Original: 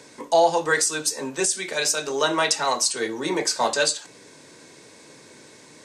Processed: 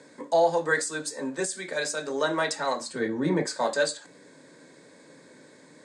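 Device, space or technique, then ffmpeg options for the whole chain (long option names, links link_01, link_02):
car door speaker: -filter_complex "[0:a]asettb=1/sr,asplit=3[link_01][link_02][link_03];[link_01]atrim=end=2.804[link_04];[link_02]atrim=start=2.8:end=3.46,asetpts=PTS-STARTPTS,afade=type=in:duration=0.004:curve=qsin,afade=type=out:start_time=0.656:duration=0.004:curve=qsin,bass=frequency=250:gain=14,treble=frequency=4000:gain=-8[link_05];[link_03]atrim=start=3.456[link_06];[link_04][link_05]acrossfade=duration=0.004:curve1=hsin:curve2=qsin[link_07];[link_07][link_06]acrossfade=duration=0.004:curve1=qsin:curve2=hsin,highpass=110,equalizer=frequency=170:width_type=q:width=4:gain=7,equalizer=frequency=270:width_type=q:width=4:gain=7,equalizer=frequency=550:width_type=q:width=4:gain=7,equalizer=frequency=1700:width_type=q:width=4:gain=6,equalizer=frequency=2800:width_type=q:width=4:gain=-9,equalizer=frequency=5800:width_type=q:width=4:gain=-9,lowpass=frequency=9100:width=0.5412,lowpass=frequency=9100:width=1.3066,volume=-6.5dB"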